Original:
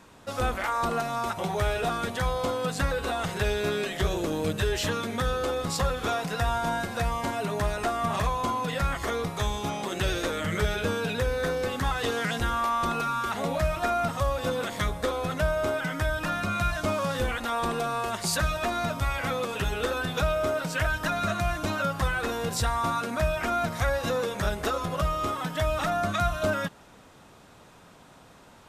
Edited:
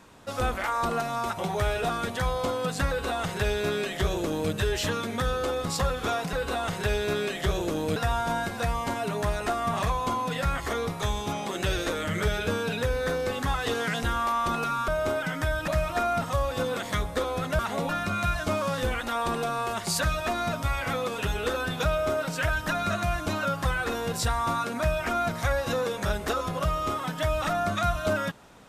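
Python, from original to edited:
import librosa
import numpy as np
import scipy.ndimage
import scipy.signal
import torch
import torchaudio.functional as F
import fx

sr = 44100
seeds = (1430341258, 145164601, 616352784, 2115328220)

y = fx.edit(x, sr, fx.duplicate(start_s=2.89, length_s=1.63, to_s=6.33),
    fx.swap(start_s=13.25, length_s=0.3, other_s=15.46, other_length_s=0.8), tone=tone)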